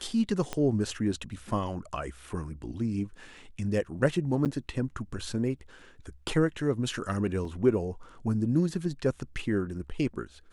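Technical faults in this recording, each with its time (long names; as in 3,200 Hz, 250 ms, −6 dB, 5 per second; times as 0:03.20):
0:00.53: click −17 dBFS
0:04.45–0:04.46: drop-out 8.1 ms
0:07.45: drop-out 2 ms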